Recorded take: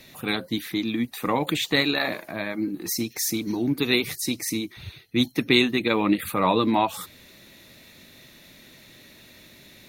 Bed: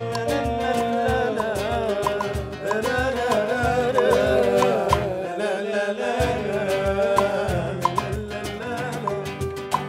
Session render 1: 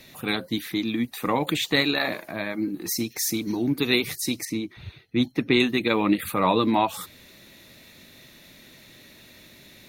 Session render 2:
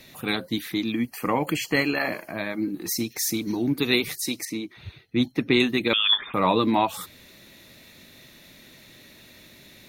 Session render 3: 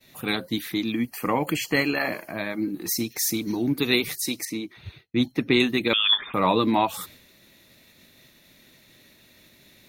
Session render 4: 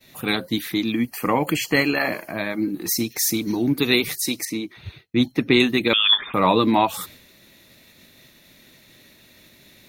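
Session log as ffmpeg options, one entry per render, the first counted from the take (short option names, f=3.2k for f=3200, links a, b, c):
-filter_complex "[0:a]asettb=1/sr,asplit=3[a][b][c];[a]atrim=end=4.454[d];[b]atrim=start=4.45:end=5.6,asetpts=PTS-STARTPTS,afade=t=in:d=0.004:c=qsin,afade=t=out:st=1.146:d=0.004:c=qsin,lowpass=f=2.2k:p=1[e];[c]atrim=start=5.596[f];[d][e]acrossfade=d=0.004:c1=hsin:c2=qsin[g];[g][f]acrossfade=d=0.004:c1=qsin:c2=hsin"
-filter_complex "[0:a]asettb=1/sr,asplit=3[a][b][c];[a]atrim=end=0.924[d];[b]atrim=start=0.92:end=2.38,asetpts=PTS-STARTPTS,afade=t=in:d=0.004:c=qsin,afade=t=out:st=1.456:d=0.004:c=qsin,asuperstop=centerf=3700:order=20:qfactor=4.8[e];[c]atrim=start=2.376[f];[d][e]acrossfade=d=0.004:c1=hsin:c2=qsin[g];[g][f]acrossfade=d=0.004:c1=qsin:c2=hsin,asettb=1/sr,asplit=3[h][i][j];[h]atrim=end=4.084[k];[i]atrim=start=4.08:end=4.85,asetpts=PTS-STARTPTS,afade=t=in:d=0.004:c=qsin,afade=t=out:st=0.766:d=0.004:c=qsin,highpass=f=240:p=1[l];[j]atrim=start=4.846[m];[k][l]acrossfade=d=0.004:c1=hsin:c2=qsin[n];[n][m]acrossfade=d=0.004:c1=qsin:c2=hsin,asettb=1/sr,asplit=3[o][p][q];[o]atrim=end=5.934[r];[p]atrim=start=5.93:end=6.34,asetpts=PTS-STARTPTS,afade=t=in:d=0.004:c=qsin,afade=t=out:st=0.406:d=0.004:c=qsin,lowpass=f=3.1k:t=q:w=0.5098,lowpass=f=3.1k:t=q:w=0.6013,lowpass=f=3.1k:t=q:w=0.9,lowpass=f=3.1k:t=q:w=2.563,afreqshift=-3700[s];[q]atrim=start=6.336[t];[r][s]acrossfade=d=0.004:c1=hsin:c2=qsin[u];[u][t]acrossfade=d=0.004:c1=qsin:c2=hsin"
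-af "agate=range=-33dB:threshold=-44dB:ratio=3:detection=peak,highshelf=f=11k:g=3.5"
-af "volume=3.5dB,alimiter=limit=-3dB:level=0:latency=1"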